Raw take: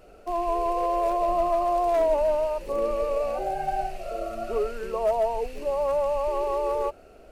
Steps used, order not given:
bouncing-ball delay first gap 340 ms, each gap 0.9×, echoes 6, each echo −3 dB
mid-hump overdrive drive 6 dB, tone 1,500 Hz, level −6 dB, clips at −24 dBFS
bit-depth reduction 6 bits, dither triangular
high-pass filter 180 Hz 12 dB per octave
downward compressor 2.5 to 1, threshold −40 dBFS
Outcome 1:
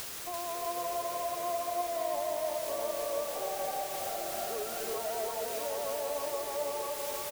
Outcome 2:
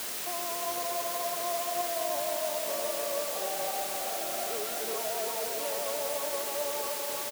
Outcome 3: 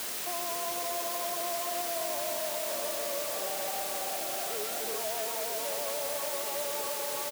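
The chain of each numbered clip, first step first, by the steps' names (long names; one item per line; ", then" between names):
mid-hump overdrive, then high-pass filter, then bit-depth reduction, then downward compressor, then bouncing-ball delay
mid-hump overdrive, then downward compressor, then bouncing-ball delay, then bit-depth reduction, then high-pass filter
bouncing-ball delay, then mid-hump overdrive, then downward compressor, then bit-depth reduction, then high-pass filter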